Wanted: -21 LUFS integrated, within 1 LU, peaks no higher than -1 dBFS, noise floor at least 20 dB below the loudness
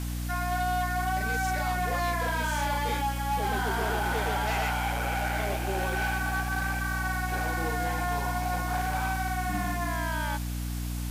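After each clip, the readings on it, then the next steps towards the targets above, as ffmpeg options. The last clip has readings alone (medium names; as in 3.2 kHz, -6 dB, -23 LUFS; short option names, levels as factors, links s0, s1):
hum 60 Hz; highest harmonic 300 Hz; hum level -30 dBFS; noise floor -32 dBFS; noise floor target -50 dBFS; loudness -29.5 LUFS; peak level -18.5 dBFS; loudness target -21.0 LUFS
-> -af "bandreject=f=60:t=h:w=6,bandreject=f=120:t=h:w=6,bandreject=f=180:t=h:w=6,bandreject=f=240:t=h:w=6,bandreject=f=300:t=h:w=6"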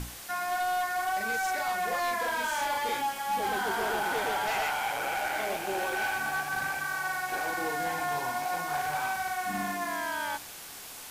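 hum not found; noise floor -44 dBFS; noise floor target -51 dBFS
-> -af "afftdn=nr=7:nf=-44"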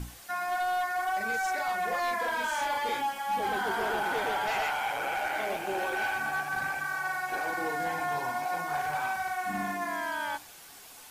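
noise floor -50 dBFS; noise floor target -51 dBFS
-> -af "afftdn=nr=6:nf=-50"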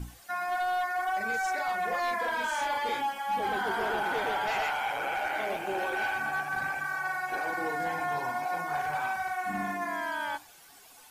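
noise floor -54 dBFS; loudness -31.0 LUFS; peak level -23.0 dBFS; loudness target -21.0 LUFS
-> -af "volume=3.16"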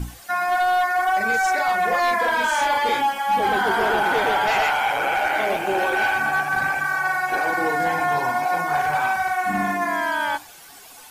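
loudness -21.0 LUFS; peak level -13.0 dBFS; noise floor -44 dBFS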